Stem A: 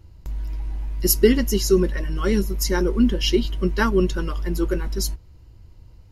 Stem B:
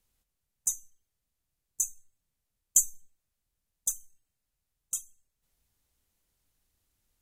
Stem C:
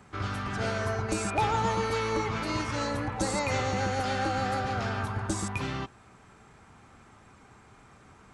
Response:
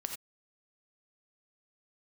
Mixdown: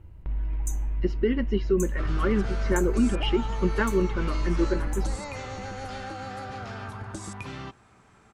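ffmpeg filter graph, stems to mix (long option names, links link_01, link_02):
-filter_complex "[0:a]lowpass=frequency=2700:width=0.5412,lowpass=frequency=2700:width=1.3066,alimiter=limit=-13dB:level=0:latency=1:release=400,volume=-0.5dB[link_01];[1:a]volume=-7dB[link_02];[2:a]adelay=1850,volume=-2.5dB[link_03];[link_02][link_03]amix=inputs=2:normalize=0,acompressor=threshold=-33dB:ratio=6,volume=0dB[link_04];[link_01][link_04]amix=inputs=2:normalize=0"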